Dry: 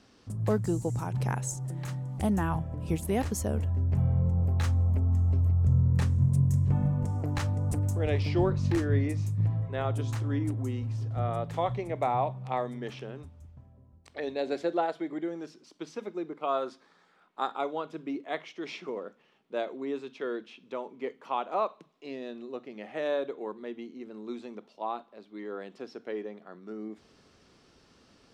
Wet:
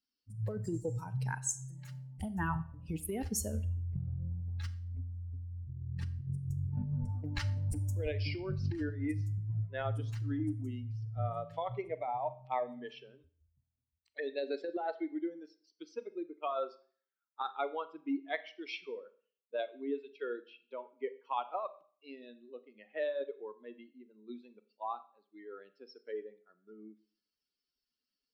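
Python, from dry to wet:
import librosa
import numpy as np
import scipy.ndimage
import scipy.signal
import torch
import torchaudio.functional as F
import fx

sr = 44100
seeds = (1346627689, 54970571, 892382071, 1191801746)

y = fx.bin_expand(x, sr, power=2.0)
y = fx.over_compress(y, sr, threshold_db=-35.0, ratio=-1.0)
y = fx.rev_schroeder(y, sr, rt60_s=0.47, comb_ms=29, drr_db=13.5)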